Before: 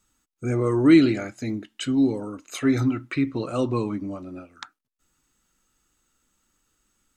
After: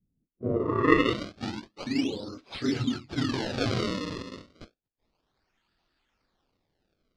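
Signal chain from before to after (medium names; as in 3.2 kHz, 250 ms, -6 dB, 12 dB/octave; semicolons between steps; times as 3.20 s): phase randomisation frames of 50 ms; vibrato 0.95 Hz 8.9 cents; decimation with a swept rate 32×, swing 160% 0.3 Hz; low-pass sweep 180 Hz -> 4.6 kHz, 0.16–1.20 s; 3.14–4.23 s: decay stretcher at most 23 dB/s; trim -6 dB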